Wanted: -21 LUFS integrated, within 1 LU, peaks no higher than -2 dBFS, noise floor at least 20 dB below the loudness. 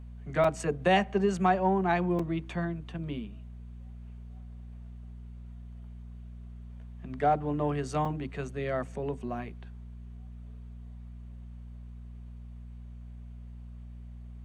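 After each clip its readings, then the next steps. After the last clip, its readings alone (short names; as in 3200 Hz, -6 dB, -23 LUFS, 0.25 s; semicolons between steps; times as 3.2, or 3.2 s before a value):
dropouts 3; longest dropout 4.2 ms; hum 60 Hz; harmonics up to 240 Hz; hum level -42 dBFS; loudness -30.0 LUFS; peak -12.5 dBFS; loudness target -21.0 LUFS
-> interpolate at 0.44/2.19/8.05, 4.2 ms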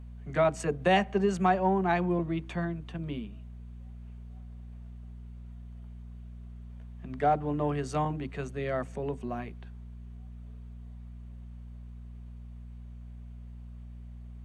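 dropouts 0; hum 60 Hz; harmonics up to 240 Hz; hum level -42 dBFS
-> de-hum 60 Hz, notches 4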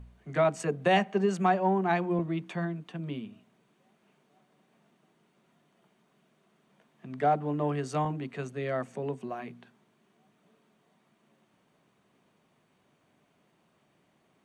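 hum none; loudness -30.0 LUFS; peak -12.5 dBFS; loudness target -21.0 LUFS
-> gain +9 dB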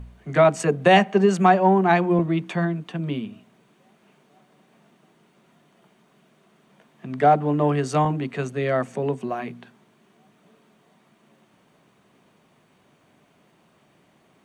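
loudness -21.0 LUFS; peak -3.5 dBFS; noise floor -61 dBFS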